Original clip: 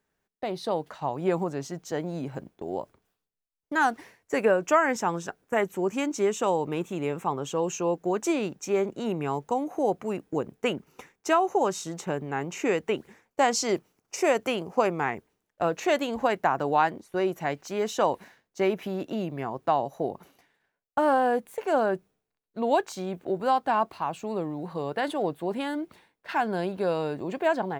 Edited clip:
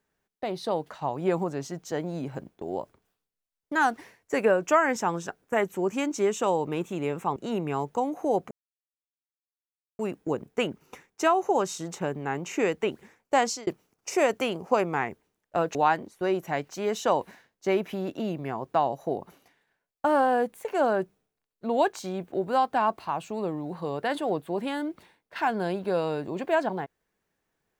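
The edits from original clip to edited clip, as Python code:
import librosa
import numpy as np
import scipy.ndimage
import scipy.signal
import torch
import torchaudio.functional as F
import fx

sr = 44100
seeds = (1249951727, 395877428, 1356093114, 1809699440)

y = fx.edit(x, sr, fx.cut(start_s=7.36, length_s=1.54),
    fx.insert_silence(at_s=10.05, length_s=1.48),
    fx.fade_out_span(start_s=13.48, length_s=0.25),
    fx.cut(start_s=15.81, length_s=0.87), tone=tone)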